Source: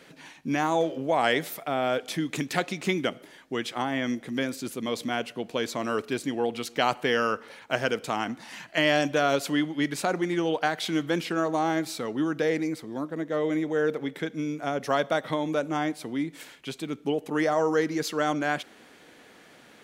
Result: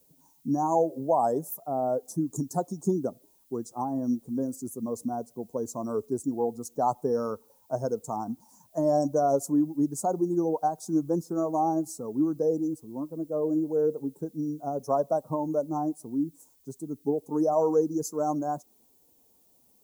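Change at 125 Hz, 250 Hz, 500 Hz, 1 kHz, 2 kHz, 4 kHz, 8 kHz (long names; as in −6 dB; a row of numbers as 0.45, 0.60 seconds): −0.5 dB, +0.5 dB, 0.0 dB, −0.5 dB, below −25 dB, below −20 dB, −1.0 dB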